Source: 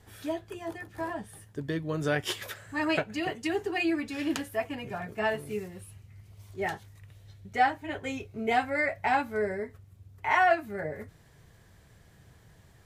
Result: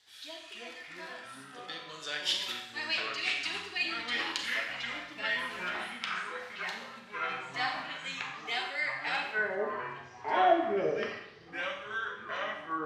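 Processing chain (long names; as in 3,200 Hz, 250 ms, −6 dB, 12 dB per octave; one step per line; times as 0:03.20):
band-pass filter sweep 4,000 Hz → 400 Hz, 0:09.13–0:09.76
delay with pitch and tempo change per echo 221 ms, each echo −5 semitones, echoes 3
four-comb reverb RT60 0.77 s, combs from 30 ms, DRR 3 dB
level +7.5 dB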